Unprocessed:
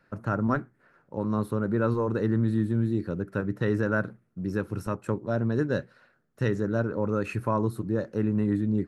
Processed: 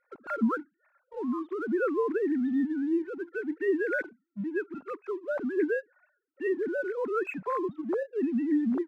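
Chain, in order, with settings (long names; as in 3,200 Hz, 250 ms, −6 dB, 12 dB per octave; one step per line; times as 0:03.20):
three sine waves on the formant tracks
in parallel at −4.5 dB: dead-zone distortion −45.5 dBFS
on the sum: level −6.5 dB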